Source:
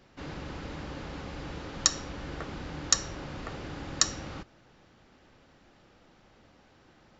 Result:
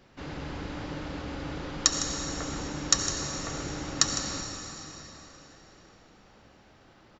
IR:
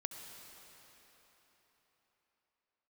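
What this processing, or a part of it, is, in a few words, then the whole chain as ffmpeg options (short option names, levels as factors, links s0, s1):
cave: -filter_complex "[0:a]aecho=1:1:157:0.266[s0];[1:a]atrim=start_sample=2205[s1];[s0][s1]afir=irnorm=-1:irlink=0,volume=1.58"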